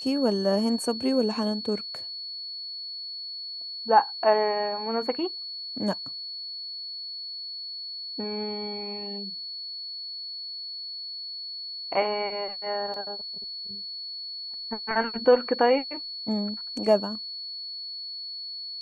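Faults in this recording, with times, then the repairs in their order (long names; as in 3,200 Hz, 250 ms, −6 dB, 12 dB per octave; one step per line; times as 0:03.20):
whistle 4,400 Hz −34 dBFS
0:12.94: drop-out 2 ms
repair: notch filter 4,400 Hz, Q 30
repair the gap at 0:12.94, 2 ms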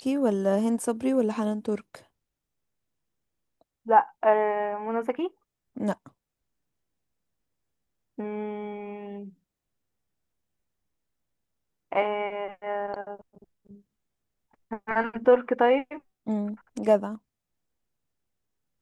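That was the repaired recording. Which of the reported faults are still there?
none of them is left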